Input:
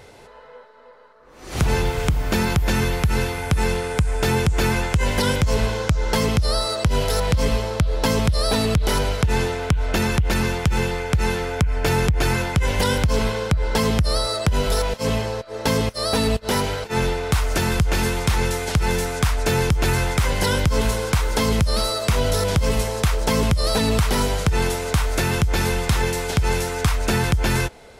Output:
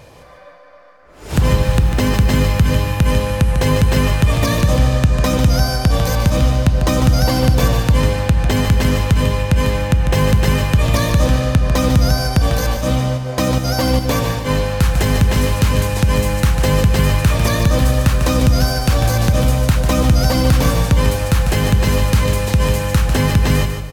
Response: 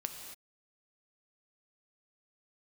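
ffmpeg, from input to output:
-filter_complex "[0:a]aecho=1:1:173|346|519:0.398|0.115|0.0335,asplit=2[a][b];[1:a]atrim=start_sample=2205,lowshelf=f=480:g=10.5[c];[b][c]afir=irnorm=-1:irlink=0,volume=-5dB[d];[a][d]amix=inputs=2:normalize=0,asetrate=51597,aresample=44100,volume=-2.5dB"

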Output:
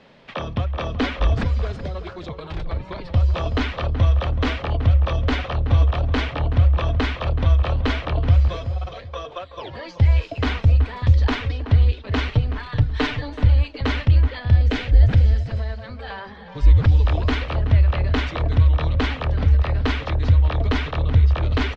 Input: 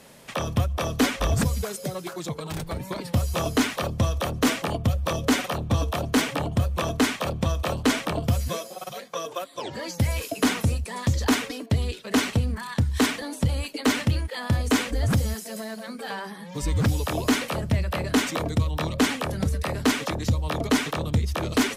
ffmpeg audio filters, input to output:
-filter_complex "[0:a]asettb=1/sr,asplit=3[a][b][c];[a]atrim=end=12.314[d];[b]atrim=start=12.31:end=13.3,asetpts=PTS-STARTPTS,afade=t=in:d=0.004:c=qsin,afade=t=out:st=0.986:d=0.004:c=qsin,aecho=1:1:6.7:0.75,atrim=end_sample=43659[e];[c]atrim=start=13.296[f];[d][e]acrossfade=d=0.004:c1=hsin:c2=qsin[g];[g][f]acrossfade=d=0.004:c1=qsin:c2=hsin,asplit=2[h][i];[i]adelay=377,lowpass=f=1.9k:p=1,volume=-10.5dB,asplit=2[j][k];[k]adelay=377,lowpass=f=1.9k:p=1,volume=0.25,asplit=2[l][m];[m]adelay=377,lowpass=f=1.9k:p=1,volume=0.25[n];[h][j][l][n]amix=inputs=4:normalize=0,asubboost=boost=11.5:cutoff=57,lowpass=f=4k:w=0.5412,lowpass=f=4k:w=1.3066,asettb=1/sr,asplit=3[o][p][q];[o]atrim=end=14.394[r];[p]atrim=start=14.39:end=15.49,asetpts=PTS-STARTPTS,afade=t=in:d=0.004:c=qsin,afade=t=out:st=1.096:d=0.004:c=qsin,equalizer=f=1.1k:w=3:g=-9.5[s];[q]atrim=start=15.486[t];[r][s]acrossfade=d=0.004:c1=hsin:c2=qsin[u];[u][t]acrossfade=d=0.004:c1=qsin:c2=hsin"

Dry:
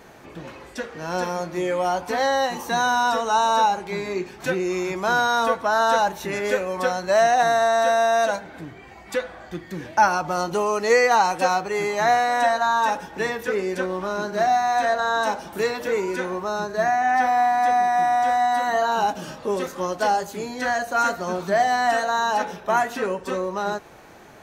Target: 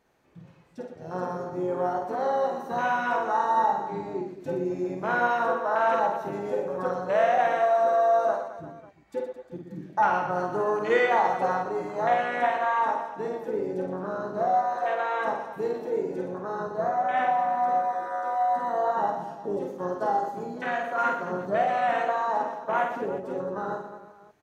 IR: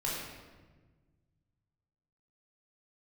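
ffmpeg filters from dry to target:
-filter_complex "[0:a]asplit=2[a][b];[b]asetrate=33038,aresample=44100,atempo=1.33484,volume=-12dB[c];[a][c]amix=inputs=2:normalize=0,afwtdn=0.0708,aecho=1:1:50|120|218|355.2|547.3:0.631|0.398|0.251|0.158|0.1,volume=-6.5dB"

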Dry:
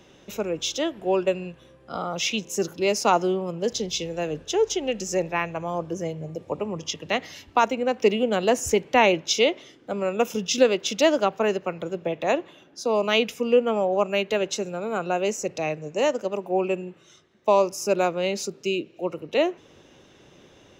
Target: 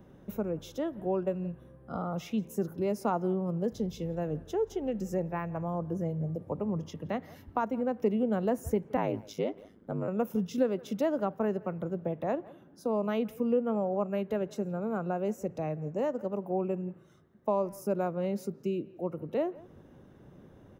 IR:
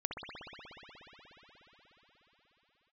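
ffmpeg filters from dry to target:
-filter_complex "[0:a]asplit=2[a][b];[b]adelay=170,highpass=300,lowpass=3.4k,asoftclip=type=hard:threshold=-14.5dB,volume=-23dB[c];[a][c]amix=inputs=2:normalize=0,asplit=3[d][e][f];[d]afade=t=out:st=8.96:d=0.02[g];[e]aeval=exprs='val(0)*sin(2*PI*52*n/s)':c=same,afade=t=in:st=8.96:d=0.02,afade=t=out:st=10.07:d=0.02[h];[f]afade=t=in:st=10.07:d=0.02[i];[g][h][i]amix=inputs=3:normalize=0,aexciter=amount=4.3:drive=7.8:freq=9.1k,acompressor=threshold=-30dB:ratio=1.5,firequalizer=gain_entry='entry(210,0);entry(330,-7);entry(1600,-11);entry(2500,-23)':delay=0.05:min_phase=1,volume=3.5dB"

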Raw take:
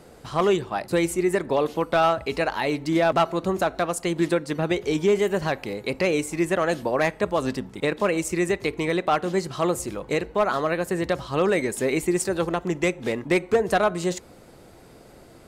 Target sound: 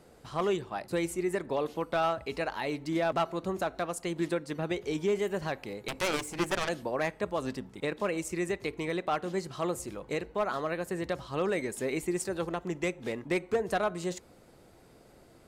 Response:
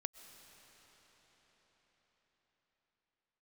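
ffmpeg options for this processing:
-filter_complex "[0:a]asettb=1/sr,asplit=3[a][b][c];[a]atrim=end=5.884[d];[b]atrim=start=5.88:end=6.69,asetpts=PTS-STARTPTS,afade=t=in:d=0.004:c=qsin,afade=t=out:st=0.806:d=0.004:c=qsin,aeval=exprs='0.266*(cos(1*acos(clip(val(0)/0.266,-1,1)))-cos(1*PI/2))+0.0944*(cos(7*acos(clip(val(0)/0.266,-1,1)))-cos(7*PI/2))':c=same[e];[c]atrim=start=6.686[f];[d][e]acrossfade=d=0.004:c1=hsin:c2=qsin[g];[g][f]acrossfade=d=0.004:c1=qsin:c2=hsin,volume=-8.5dB"

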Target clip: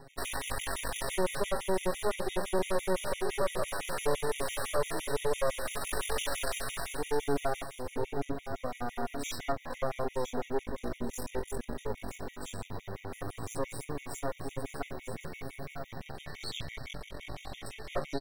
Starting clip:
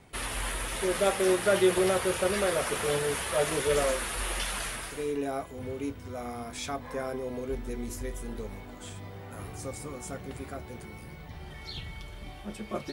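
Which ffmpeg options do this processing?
-filter_complex "[0:a]equalizer=f=600:t=o:w=1.4:g=5,bandreject=f=7.7k:w=27,aecho=1:1:7.3:0.65,asplit=2[a][b];[b]acompressor=threshold=-32dB:ratio=6,volume=-1.5dB[c];[a][c]amix=inputs=2:normalize=0,alimiter=limit=-13dB:level=0:latency=1:release=464,aeval=exprs='max(val(0),0)':c=same,atempo=0.71,asoftclip=type=tanh:threshold=-16dB,asplit=2[d][e];[e]aecho=0:1:947:0.335[f];[d][f]amix=inputs=2:normalize=0,afftfilt=real='re*gt(sin(2*PI*5.9*pts/sr)*(1-2*mod(floor(b*sr/1024/1900),2)),0)':imag='im*gt(sin(2*PI*5.9*pts/sr)*(1-2*mod(floor(b*sr/1024/1900),2)),0)':win_size=1024:overlap=0.75"

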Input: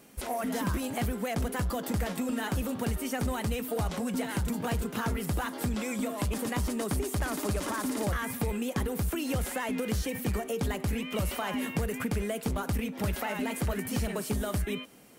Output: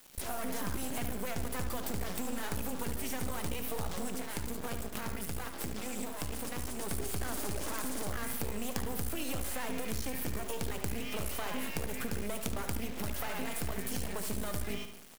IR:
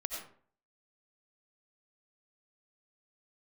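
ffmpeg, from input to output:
-filter_complex "[0:a]highshelf=f=5.3k:g=7,acompressor=threshold=-32dB:ratio=5,acrusher=bits=5:dc=4:mix=0:aa=0.000001,asettb=1/sr,asplit=3[a][b][c];[a]atrim=end=4.084[d];[b]atrim=start=4.08:end=6.82,asetpts=PTS-STARTPTS,afade=t=in:d=0.004:c=qsin,afade=t=out:st=2.736:d=0.004:c=qsin,aeval=exprs='sgn(val(0))*max(abs(val(0))-0.00562,0)':c=same[e];[c]atrim=start=6.816[f];[d][e]acrossfade=d=0.004:c1=hsin:c2=qsin[g];[g][f]acrossfade=d=0.004:c1=qsin:c2=hsin,asplit=2[h][i];[i]adelay=73,lowpass=f=4.8k:p=1,volume=-8dB,asplit=2[j][k];[k]adelay=73,lowpass=f=4.8k:p=1,volume=0.49,asplit=2[l][m];[m]adelay=73,lowpass=f=4.8k:p=1,volume=0.49,asplit=2[n][o];[o]adelay=73,lowpass=f=4.8k:p=1,volume=0.49,asplit=2[p][q];[q]adelay=73,lowpass=f=4.8k:p=1,volume=0.49,asplit=2[r][s];[s]adelay=73,lowpass=f=4.8k:p=1,volume=0.49[t];[h][j][l][n][p][r][t]amix=inputs=7:normalize=0,volume=1.5dB"

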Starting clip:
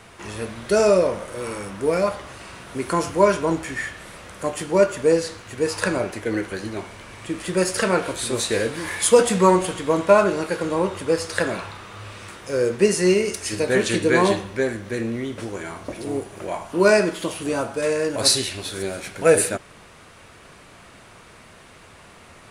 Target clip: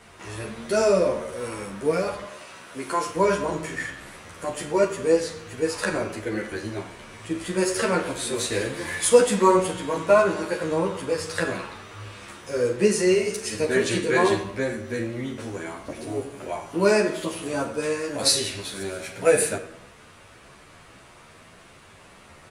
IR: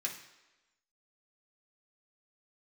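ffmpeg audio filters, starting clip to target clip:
-filter_complex "[0:a]asettb=1/sr,asplit=3[a][b][c];[a]atrim=end=2.244[d];[b]atrim=start=2.24:end=3.15,asetpts=PTS-STARTPTS,afade=t=in:d=0.004:c=qsin,afade=t=out:st=0.906:d=0.004:c=qsin,highpass=f=390:p=1[e];[c]atrim=start=3.146[f];[d][e]acrossfade=d=0.004:c1=hsin:c2=qsin[g];[g][f]acrossfade=d=0.004:c1=qsin:c2=hsin,asplit=2[h][i];[i]adelay=92,lowpass=f=2k:p=1,volume=-13dB,asplit=2[j][k];[k]adelay=92,lowpass=f=2k:p=1,volume=0.52,asplit=2[l][m];[m]adelay=92,lowpass=f=2k:p=1,volume=0.52,asplit=2[n][o];[o]adelay=92,lowpass=f=2k:p=1,volume=0.52,asplit=2[p][q];[q]adelay=92,lowpass=f=2k:p=1,volume=0.52[r];[h][j][l][n][p][r]amix=inputs=6:normalize=0,asplit=2[s][t];[1:a]atrim=start_sample=2205,adelay=41[u];[t][u]afir=irnorm=-1:irlink=0,volume=-12.5dB[v];[s][v]amix=inputs=2:normalize=0,asplit=2[w][x];[x]adelay=11.2,afreqshift=1.7[y];[w][y]amix=inputs=2:normalize=1"

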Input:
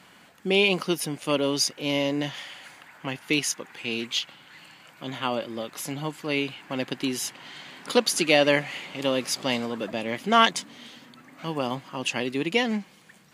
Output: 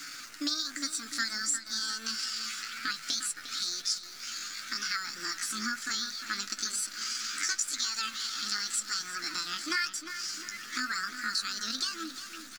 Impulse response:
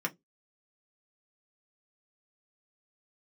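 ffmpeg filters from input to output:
-filter_complex "[0:a]firequalizer=gain_entry='entry(190,0);entry(270,-25);entry(570,-23);entry(840,13);entry(1900,0);entry(3000,13);entry(4700,15);entry(11000,-19)':delay=0.05:min_phase=1,acompressor=threshold=-33dB:ratio=5,asetrate=46746,aresample=44100,acrusher=bits=9:dc=4:mix=0:aa=0.000001,flanger=delay=9.7:depth=4.8:regen=36:speed=1:shape=sinusoidal,asetrate=64194,aresample=44100,atempo=0.686977,asplit=2[a][b];[b]adelay=353,lowpass=f=4.4k:p=1,volume=-10dB,asplit=2[c][d];[d]adelay=353,lowpass=f=4.4k:p=1,volume=0.52,asplit=2[e][f];[f]adelay=353,lowpass=f=4.4k:p=1,volume=0.52,asplit=2[g][h];[h]adelay=353,lowpass=f=4.4k:p=1,volume=0.52,asplit=2[i][j];[j]adelay=353,lowpass=f=4.4k:p=1,volume=0.52,asplit=2[k][l];[l]adelay=353,lowpass=f=4.4k:p=1,volume=0.52[m];[a][c][e][g][i][k][m]amix=inputs=7:normalize=0,asplit=2[n][o];[1:a]atrim=start_sample=2205[p];[o][p]afir=irnorm=-1:irlink=0,volume=-18dB[q];[n][q]amix=inputs=2:normalize=0,volume=5dB"

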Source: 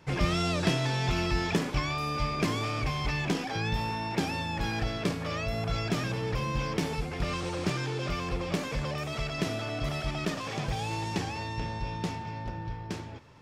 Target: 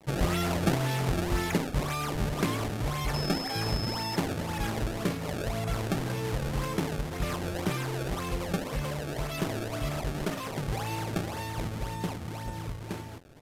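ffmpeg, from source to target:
-filter_complex "[0:a]acrusher=samples=25:mix=1:aa=0.000001:lfo=1:lforange=40:lforate=1.9,asettb=1/sr,asplit=3[a][b][c];[a]atrim=end=3.144[d];[b]atrim=start=3.14:end=4.16,asetpts=PTS-STARTPTS,afade=t=in:d=0.004:c=qsin,afade=t=out:st=1.016:d=0.004:c=qsin,aeval=exprs='val(0)+0.0158*sin(2*PI*5200*n/s)':c=same[e];[c]atrim=start=4.156[f];[d][e]acrossfade=d=0.004:c1=hsin:c2=qsin[g];[g][f]acrossfade=d=0.004:c1=qsin:c2=hsin,acrusher=bits=8:mix=0:aa=0.000001,aresample=32000,aresample=44100"

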